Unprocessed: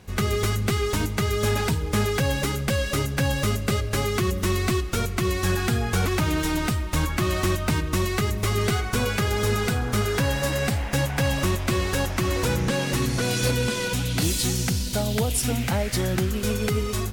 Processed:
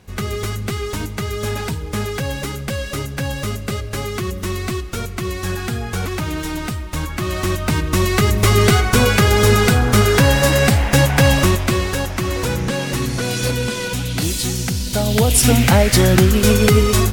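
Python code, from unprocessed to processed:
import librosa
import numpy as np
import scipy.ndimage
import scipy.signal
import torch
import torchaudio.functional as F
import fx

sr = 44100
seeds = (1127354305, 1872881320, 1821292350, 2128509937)

y = fx.gain(x, sr, db=fx.line((7.08, 0.0), (8.41, 10.5), (11.32, 10.5), (12.0, 3.0), (14.73, 3.0), (15.47, 12.0)))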